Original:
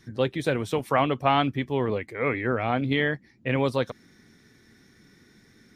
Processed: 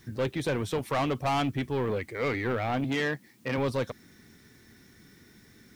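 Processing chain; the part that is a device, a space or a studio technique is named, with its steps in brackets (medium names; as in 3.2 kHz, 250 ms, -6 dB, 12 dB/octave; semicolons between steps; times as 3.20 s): open-reel tape (saturation -23 dBFS, distortion -9 dB; peaking EQ 74 Hz +4 dB 1.05 oct; white noise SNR 35 dB); 2.84–3.58 s: high-pass 150 Hz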